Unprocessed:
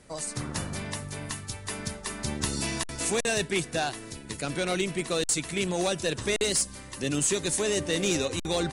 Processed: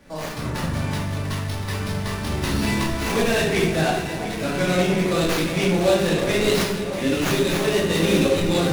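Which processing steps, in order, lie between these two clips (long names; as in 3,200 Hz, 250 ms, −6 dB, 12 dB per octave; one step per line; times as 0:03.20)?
delay that swaps between a low-pass and a high-pass 347 ms, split 1,400 Hz, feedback 83%, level −10 dB
rectangular room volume 320 cubic metres, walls mixed, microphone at 2.4 metres
windowed peak hold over 5 samples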